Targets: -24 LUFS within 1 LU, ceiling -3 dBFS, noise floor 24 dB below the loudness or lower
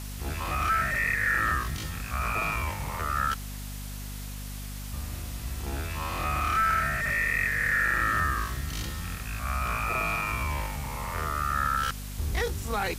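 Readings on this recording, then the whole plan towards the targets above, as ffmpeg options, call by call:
hum 50 Hz; harmonics up to 250 Hz; hum level -35 dBFS; noise floor -37 dBFS; noise floor target -53 dBFS; loudness -28.5 LUFS; peak -13.5 dBFS; loudness target -24.0 LUFS
-> -af "bandreject=f=50:t=h:w=6,bandreject=f=100:t=h:w=6,bandreject=f=150:t=h:w=6,bandreject=f=200:t=h:w=6,bandreject=f=250:t=h:w=6"
-af "afftdn=nr=16:nf=-37"
-af "volume=4.5dB"

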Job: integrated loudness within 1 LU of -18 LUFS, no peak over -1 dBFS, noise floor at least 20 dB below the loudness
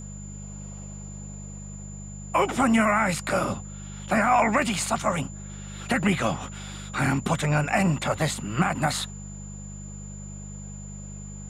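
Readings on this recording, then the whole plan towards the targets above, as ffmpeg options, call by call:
hum 50 Hz; harmonics up to 200 Hz; hum level -36 dBFS; steady tone 7100 Hz; tone level -44 dBFS; loudness -24.5 LUFS; peak -10.5 dBFS; loudness target -18.0 LUFS
-> -af "bandreject=f=50:t=h:w=4,bandreject=f=100:t=h:w=4,bandreject=f=150:t=h:w=4,bandreject=f=200:t=h:w=4"
-af "bandreject=f=7.1k:w=30"
-af "volume=6.5dB"

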